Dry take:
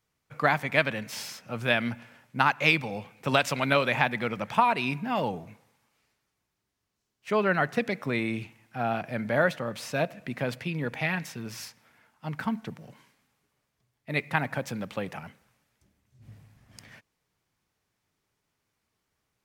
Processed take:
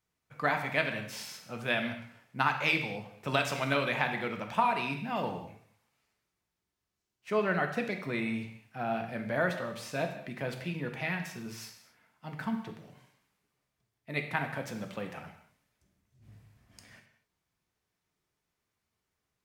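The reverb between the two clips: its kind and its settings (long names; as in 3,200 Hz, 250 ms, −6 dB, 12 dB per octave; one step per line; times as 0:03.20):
reverb whose tail is shaped and stops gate 280 ms falling, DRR 4 dB
level −6 dB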